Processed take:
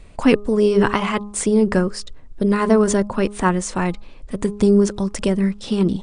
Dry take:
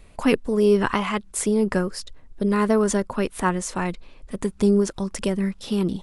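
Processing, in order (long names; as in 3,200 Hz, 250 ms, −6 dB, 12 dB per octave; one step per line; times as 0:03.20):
linear-phase brick-wall low-pass 9,800 Hz
low-shelf EQ 480 Hz +3 dB
hum removal 205.9 Hz, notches 6
level +3 dB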